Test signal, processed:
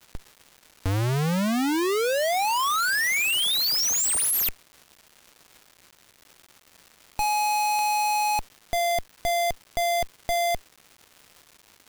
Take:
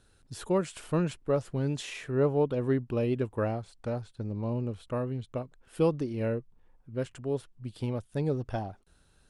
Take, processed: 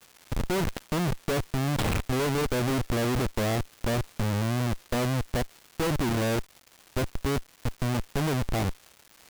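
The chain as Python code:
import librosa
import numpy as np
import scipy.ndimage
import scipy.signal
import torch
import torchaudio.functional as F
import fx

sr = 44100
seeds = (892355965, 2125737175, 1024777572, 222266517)

y = fx.schmitt(x, sr, flips_db=-34.5)
y = fx.dmg_crackle(y, sr, seeds[0], per_s=440.0, level_db=-45.0)
y = y * 10.0 ** (6.0 / 20.0)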